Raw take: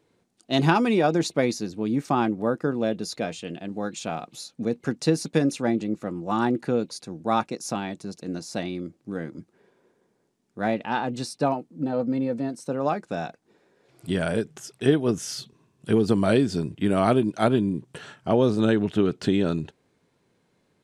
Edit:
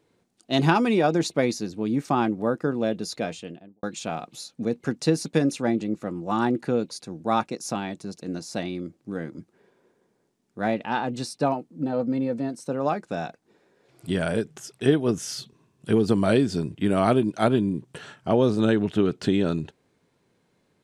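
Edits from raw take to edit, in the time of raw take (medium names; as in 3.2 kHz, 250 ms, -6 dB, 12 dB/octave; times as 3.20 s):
3.28–3.83 s: studio fade out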